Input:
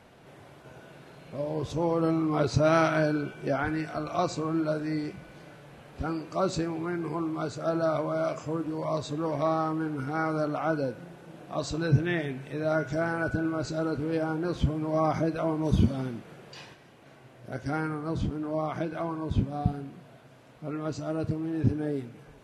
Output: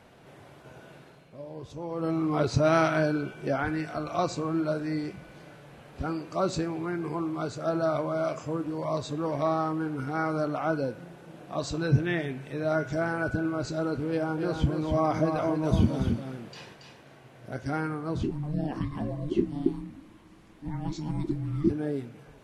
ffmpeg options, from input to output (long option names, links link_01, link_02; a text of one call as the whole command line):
ffmpeg -i in.wav -filter_complex "[0:a]asettb=1/sr,asplit=3[link_01][link_02][link_03];[link_01]atrim=end=14.104[link_04];[link_02]atrim=start=14.1:end=17.55,asetpts=PTS-STARTPTS,afade=type=in:duration=0.004:curve=qsin,afade=type=out:start_time=3.446:duration=0.004:curve=qsin,aecho=1:1:279:0.501,atrim=end_sample=152145[link_05];[link_03]atrim=start=17.546[link_06];[link_04][link_05]acrossfade=duration=0.004:curve1=hsin:curve2=qsin[link_07];[link_07][link_06]acrossfade=duration=0.004:curve1=qsin:curve2=hsin,asettb=1/sr,asplit=3[link_08][link_09][link_10];[link_08]atrim=end=18.234[link_11];[link_09]atrim=start=18.23:end=21.7,asetpts=PTS-STARTPTS,afade=type=in:duration=0.004:curve=qsin,afade=type=out:start_time=3.466:duration=0.004:curve=qsin,afreqshift=-450[link_12];[link_10]atrim=start=21.696[link_13];[link_11][link_12]acrossfade=duration=0.004:curve1=hsin:curve2=qsin[link_14];[link_14][link_13]acrossfade=duration=0.004:curve1=qsin:curve2=hsin,asplit=3[link_15][link_16][link_17];[link_15]atrim=end=1.3,asetpts=PTS-STARTPTS,afade=type=out:start_time=0.94:duration=0.36:silence=0.334965[link_18];[link_16]atrim=start=1.3:end=1.88,asetpts=PTS-STARTPTS,volume=-9.5dB[link_19];[link_17]atrim=start=1.88,asetpts=PTS-STARTPTS,afade=type=in:duration=0.36:silence=0.334965[link_20];[link_18][link_19][link_20]concat=n=3:v=0:a=1" out.wav